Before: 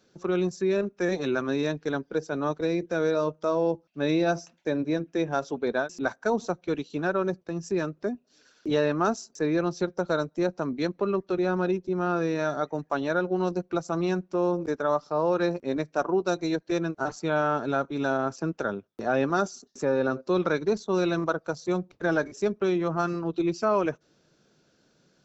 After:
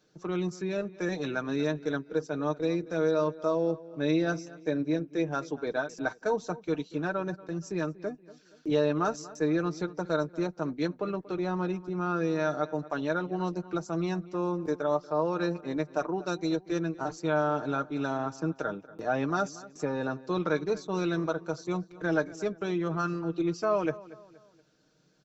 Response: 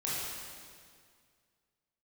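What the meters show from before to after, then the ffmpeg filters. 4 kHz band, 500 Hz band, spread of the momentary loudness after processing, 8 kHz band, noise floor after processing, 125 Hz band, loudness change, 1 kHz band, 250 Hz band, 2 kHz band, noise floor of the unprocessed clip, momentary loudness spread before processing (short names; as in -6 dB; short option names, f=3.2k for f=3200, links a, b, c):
-3.5 dB, -4.0 dB, 6 LU, n/a, -59 dBFS, -1.5 dB, -3.0 dB, -3.5 dB, -2.5 dB, -3.5 dB, -67 dBFS, 5 LU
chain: -filter_complex "[0:a]aecho=1:1:6.5:0.54,asplit=2[a][b];[b]adelay=236,lowpass=f=3.5k:p=1,volume=-18.5dB,asplit=2[c][d];[d]adelay=236,lowpass=f=3.5k:p=1,volume=0.41,asplit=2[e][f];[f]adelay=236,lowpass=f=3.5k:p=1,volume=0.41[g];[a][c][e][g]amix=inputs=4:normalize=0,volume=-4.5dB"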